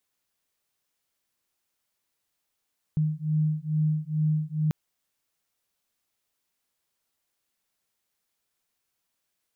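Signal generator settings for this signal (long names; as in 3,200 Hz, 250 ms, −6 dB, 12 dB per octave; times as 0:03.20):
two tones that beat 153 Hz, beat 2.3 Hz, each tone −26 dBFS 1.74 s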